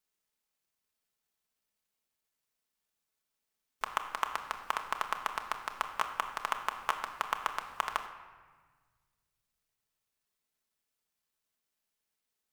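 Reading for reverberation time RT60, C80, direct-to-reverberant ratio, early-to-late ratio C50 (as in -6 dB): 1.4 s, 10.5 dB, 4.0 dB, 9.0 dB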